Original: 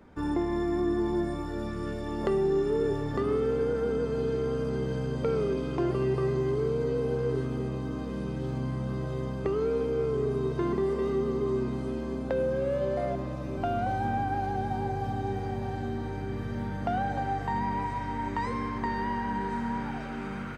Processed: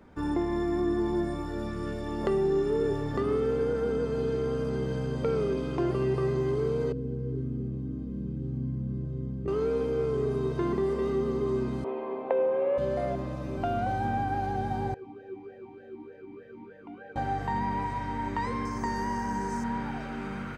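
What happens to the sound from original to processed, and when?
6.92–9.48 s: FFT filter 250 Hz 0 dB, 410 Hz -8 dB, 750 Hz -21 dB
11.84–12.78 s: cabinet simulation 420–2800 Hz, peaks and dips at 430 Hz +9 dB, 730 Hz +9 dB, 1 kHz +9 dB, 1.5 kHz -6 dB, 2.3 kHz +4 dB
14.94–17.16 s: talking filter e-u 3.3 Hz
18.65–19.64 s: resonant high shelf 4.7 kHz +9 dB, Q 3

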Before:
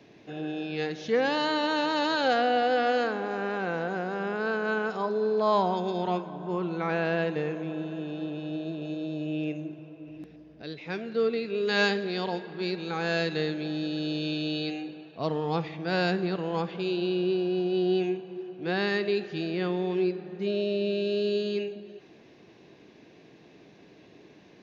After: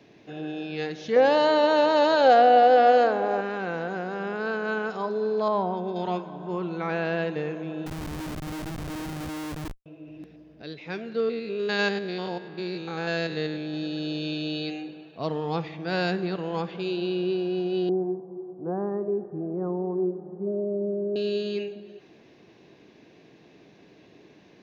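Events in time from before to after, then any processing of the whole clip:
1.16–3.41 s: peaking EQ 630 Hz +11.5 dB 1 oct
5.48–5.96 s: low-pass 1.1 kHz 6 dB/octave
7.86–9.86 s: Schmitt trigger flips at -33.5 dBFS
11.20–13.74 s: spectrogram pixelated in time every 100 ms
17.89–21.16 s: steep low-pass 1.1 kHz

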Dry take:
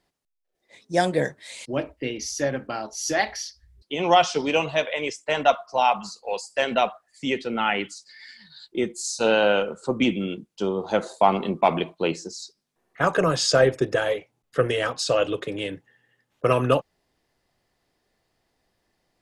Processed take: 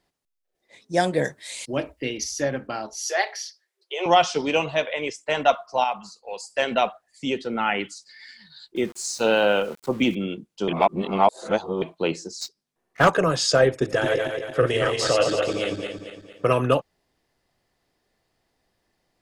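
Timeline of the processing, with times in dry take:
1.24–2.24 s: treble shelf 4 kHz +8 dB
2.95–4.06 s: Chebyshev high-pass 360 Hz, order 8
4.62–5.13 s: treble shelf 8.6 kHz -> 5.1 kHz -6 dB
5.84–6.40 s: gain -6 dB
6.90–7.79 s: peaking EQ 970 Hz -> 4.3 kHz -14 dB 0.22 oct
8.76–10.15 s: small samples zeroed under -41 dBFS
10.68–11.82 s: reverse
12.41–13.10 s: waveshaping leveller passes 2
13.71–16.45 s: backward echo that repeats 114 ms, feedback 65%, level -3 dB

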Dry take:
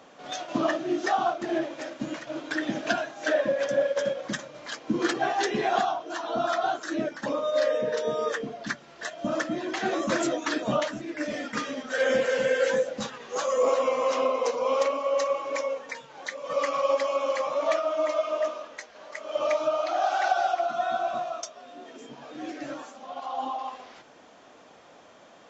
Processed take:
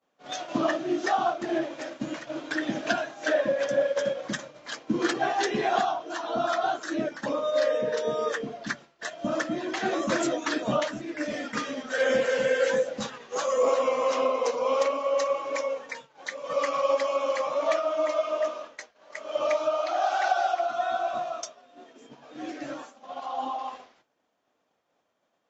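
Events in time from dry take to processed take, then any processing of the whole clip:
19.57–21.17 s: peaking EQ 190 Hz -10.5 dB
whole clip: expander -38 dBFS

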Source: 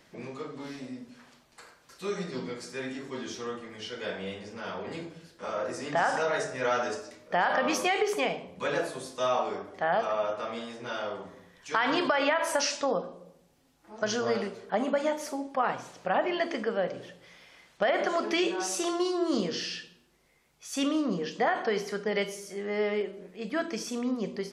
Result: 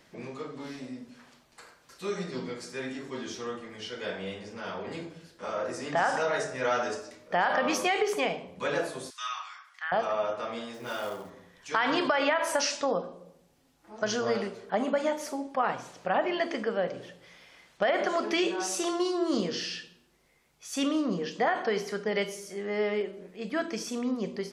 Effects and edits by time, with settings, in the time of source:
9.10–9.92 s: steep high-pass 1.2 kHz
10.74–11.30 s: short-mantissa float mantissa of 2-bit

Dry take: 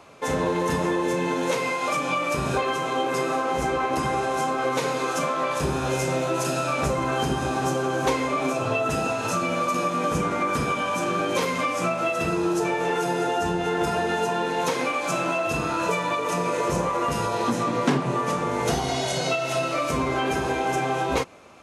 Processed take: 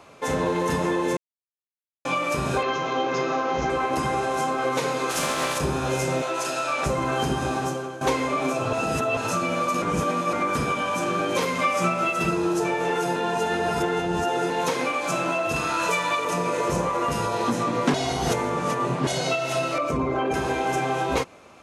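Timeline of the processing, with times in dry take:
1.17–2.05 s: mute
2.63–3.70 s: steep low-pass 6.6 kHz 72 dB/octave
5.09–5.57 s: spectral contrast reduction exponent 0.54
6.22–6.86 s: frequency weighting A
7.52–8.01 s: fade out, to -14.5 dB
8.73–9.17 s: reverse
9.82–10.33 s: reverse
11.61–12.31 s: comb 5.2 ms
13.16–14.50 s: reverse
15.56–16.25 s: tilt shelf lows -5 dB, about 810 Hz
17.94–19.07 s: reverse
19.78–20.34 s: resonances exaggerated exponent 1.5

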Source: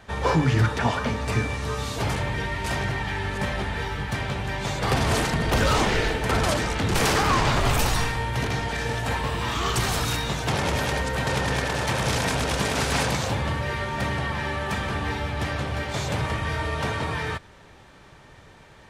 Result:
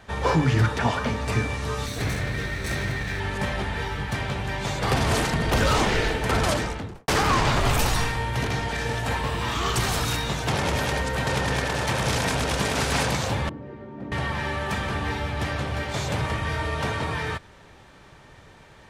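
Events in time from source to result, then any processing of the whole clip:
1.86–3.20 s: comb filter that takes the minimum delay 0.51 ms
6.51–7.08 s: studio fade out
13.49–14.12 s: band-pass filter 280 Hz, Q 2.1

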